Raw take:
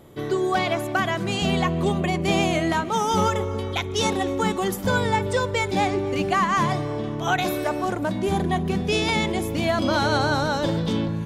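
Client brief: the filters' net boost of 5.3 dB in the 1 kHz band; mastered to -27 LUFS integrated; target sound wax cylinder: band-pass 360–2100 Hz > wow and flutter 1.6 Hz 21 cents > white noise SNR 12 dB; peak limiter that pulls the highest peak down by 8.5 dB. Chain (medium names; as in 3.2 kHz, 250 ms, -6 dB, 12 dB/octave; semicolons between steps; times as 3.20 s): peaking EQ 1 kHz +7 dB; peak limiter -15 dBFS; band-pass 360–2100 Hz; wow and flutter 1.6 Hz 21 cents; white noise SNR 12 dB; trim -1.5 dB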